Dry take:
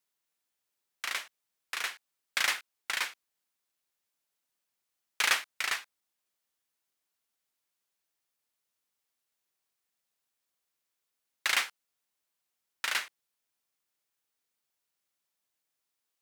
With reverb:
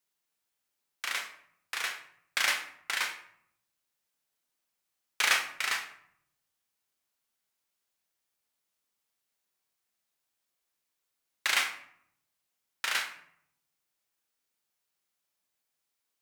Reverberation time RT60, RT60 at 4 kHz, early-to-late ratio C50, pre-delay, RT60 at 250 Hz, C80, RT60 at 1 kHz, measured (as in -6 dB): 0.65 s, 0.45 s, 9.0 dB, 27 ms, 0.95 s, 12.5 dB, 0.65 s